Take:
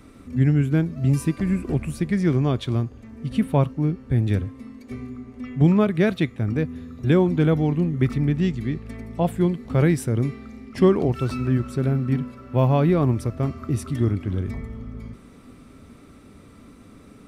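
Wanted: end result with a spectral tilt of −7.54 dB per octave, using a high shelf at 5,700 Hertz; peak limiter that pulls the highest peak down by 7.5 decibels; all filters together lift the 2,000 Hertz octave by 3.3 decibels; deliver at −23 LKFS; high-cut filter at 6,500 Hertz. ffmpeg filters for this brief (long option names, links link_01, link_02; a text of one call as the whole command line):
ffmpeg -i in.wav -af "lowpass=6500,equalizer=frequency=2000:width_type=o:gain=3.5,highshelf=frequency=5700:gain=4.5,volume=1.5dB,alimiter=limit=-11.5dB:level=0:latency=1" out.wav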